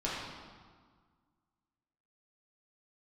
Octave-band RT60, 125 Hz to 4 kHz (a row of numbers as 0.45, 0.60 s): 2.0, 2.0, 1.6, 1.7, 1.4, 1.2 s